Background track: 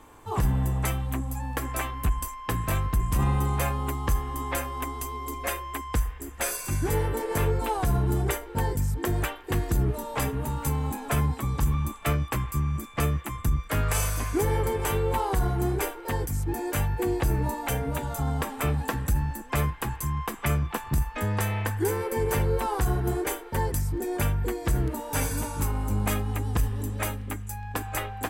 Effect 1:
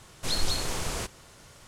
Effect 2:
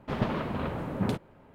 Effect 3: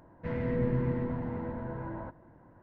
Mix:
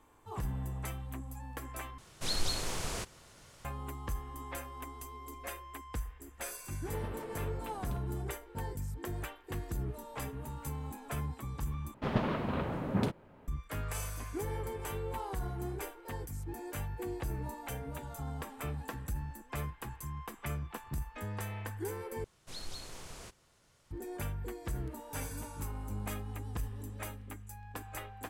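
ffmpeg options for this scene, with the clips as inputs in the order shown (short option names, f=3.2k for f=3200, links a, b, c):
-filter_complex "[1:a]asplit=2[a][b];[2:a]asplit=2[c][d];[0:a]volume=-12.5dB,asplit=4[e][f][g][h];[e]atrim=end=1.984[i];[a]atrim=end=1.67,asetpts=PTS-STARTPTS,volume=-5dB[j];[f]atrim=start=3.646:end=11.944[k];[d]atrim=end=1.54,asetpts=PTS-STARTPTS,volume=-2dB[l];[g]atrim=start=13.476:end=22.244[m];[b]atrim=end=1.67,asetpts=PTS-STARTPTS,volume=-16dB[n];[h]atrim=start=23.906[o];[c]atrim=end=1.54,asetpts=PTS-STARTPTS,volume=-17dB,afade=t=in:d=0.004:c=hsin,afade=t=out:st=1.536:d=0.004:c=hsin,adelay=300762S[p];[i][j]acrossfade=d=0.004:c1=hsin:c2=hsin[q];[q][k]acrossfade=d=0.004:c1=hsin:c2=hsin[r];[r][l]acrossfade=d=0.004:c1=hsin:c2=hsin[s];[s][m]acrossfade=d=0.004:c1=hsin:c2=hsin[t];[t][n]acrossfade=d=0.004:c1=hsin:c2=hsin[u];[u][o]acrossfade=d=0.004:c1=hsin:c2=hsin[v];[v][p]amix=inputs=2:normalize=0"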